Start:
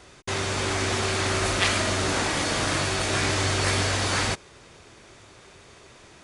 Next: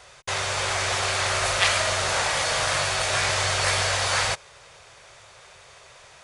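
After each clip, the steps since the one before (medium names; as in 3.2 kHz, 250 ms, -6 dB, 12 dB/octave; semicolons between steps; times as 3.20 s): FFT filter 140 Hz 0 dB, 290 Hz -15 dB, 530 Hz +7 dB; trim -4.5 dB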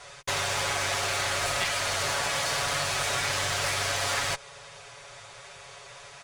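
comb 7.1 ms, depth 93%; compression, threshold -23 dBFS, peak gain reduction 10 dB; one-sided clip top -29.5 dBFS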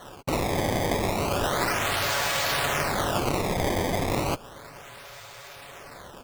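decimation with a swept rate 18×, swing 160% 0.33 Hz; trim +2.5 dB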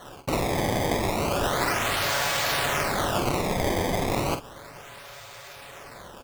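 doubling 46 ms -9 dB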